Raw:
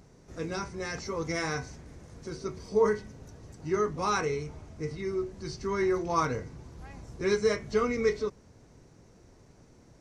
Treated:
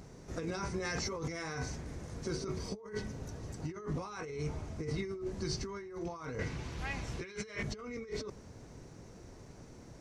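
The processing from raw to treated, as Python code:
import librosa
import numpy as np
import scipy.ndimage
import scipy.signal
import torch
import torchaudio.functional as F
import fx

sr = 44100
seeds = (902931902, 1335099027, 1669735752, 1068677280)

y = fx.peak_eq(x, sr, hz=2700.0, db=12.5, octaves=1.8, at=(6.39, 7.63))
y = fx.over_compress(y, sr, threshold_db=-38.0, ratio=-1.0)
y = y * 10.0 ** (-2.0 / 20.0)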